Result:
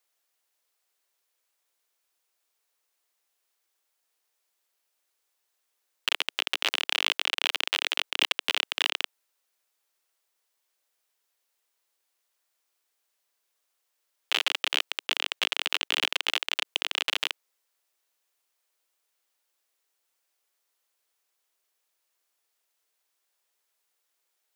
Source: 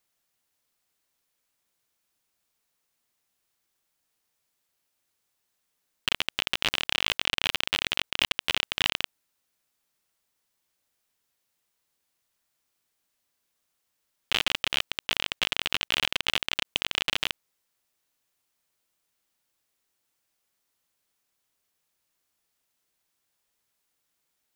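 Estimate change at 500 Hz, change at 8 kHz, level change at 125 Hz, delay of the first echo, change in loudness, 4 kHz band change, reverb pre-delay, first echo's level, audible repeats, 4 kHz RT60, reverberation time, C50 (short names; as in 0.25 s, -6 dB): -0.5 dB, 0.0 dB, under -30 dB, none, 0.0 dB, 0.0 dB, none, none, none, none, none, none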